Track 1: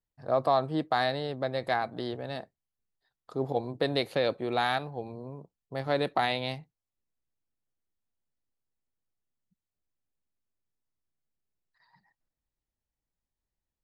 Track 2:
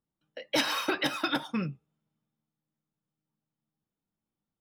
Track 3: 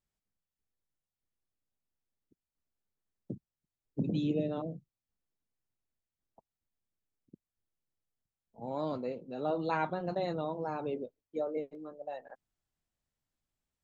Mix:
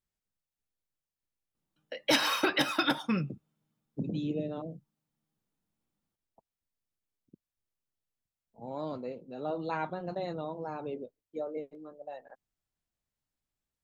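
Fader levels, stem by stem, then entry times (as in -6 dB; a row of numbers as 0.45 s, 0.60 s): mute, +1.5 dB, -2.0 dB; mute, 1.55 s, 0.00 s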